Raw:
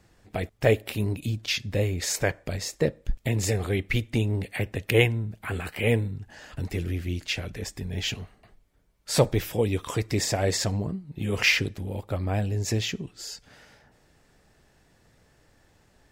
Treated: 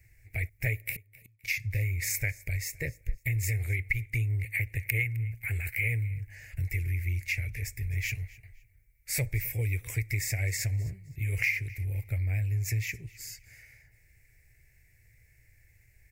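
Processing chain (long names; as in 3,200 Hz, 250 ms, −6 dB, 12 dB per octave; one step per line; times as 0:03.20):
drawn EQ curve 120 Hz 0 dB, 200 Hz −26 dB, 350 Hz −18 dB, 650 Hz −20 dB, 1,200 Hz −29 dB, 2,200 Hz +8 dB, 3,200 Hz −22 dB, 5,200 Hz −10 dB, 9,800 Hz −2 dB, 14,000 Hz +7 dB
downward compressor 6 to 1, threshold −29 dBFS, peak gain reduction 13.5 dB
0:00.95–0:01.44: gate with flip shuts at −31 dBFS, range −35 dB
repeating echo 259 ms, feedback 26%, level −21.5 dB
level +3 dB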